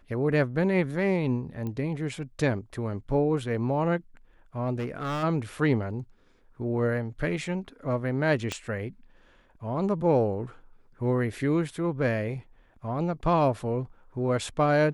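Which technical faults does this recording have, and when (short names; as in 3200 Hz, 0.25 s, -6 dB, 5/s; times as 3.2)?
1.67 pop -23 dBFS
4.78–5.24 clipped -27.5 dBFS
8.52 pop -16 dBFS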